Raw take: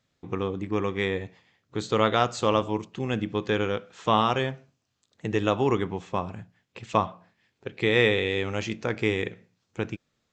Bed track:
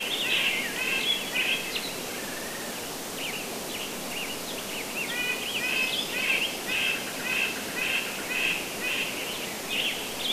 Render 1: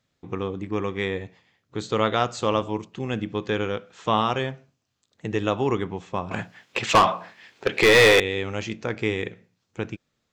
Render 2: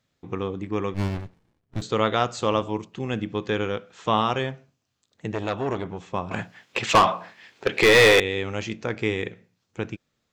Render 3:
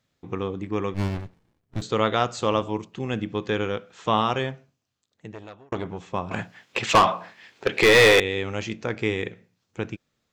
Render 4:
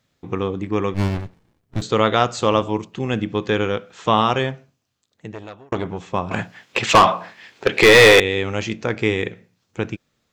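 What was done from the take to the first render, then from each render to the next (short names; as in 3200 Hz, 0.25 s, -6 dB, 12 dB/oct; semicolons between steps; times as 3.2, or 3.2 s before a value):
6.31–8.2 overdrive pedal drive 27 dB, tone 5300 Hz, clips at -7 dBFS
0.94–1.82 running maximum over 65 samples; 5.32–6.12 core saturation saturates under 1300 Hz
4.46–5.72 fade out
gain +5.5 dB; limiter -3 dBFS, peak gain reduction 1 dB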